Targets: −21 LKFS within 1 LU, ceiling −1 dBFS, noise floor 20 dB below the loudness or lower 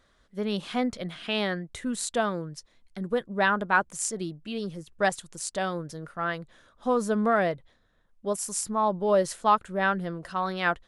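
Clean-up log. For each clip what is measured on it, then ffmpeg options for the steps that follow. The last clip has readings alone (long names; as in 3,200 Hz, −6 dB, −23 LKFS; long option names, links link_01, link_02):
integrated loudness −28.0 LKFS; sample peak −9.0 dBFS; target loudness −21.0 LKFS
→ -af "volume=7dB"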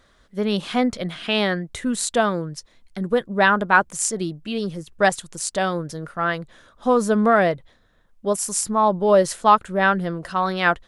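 integrated loudness −21.0 LKFS; sample peak −2.0 dBFS; background noise floor −58 dBFS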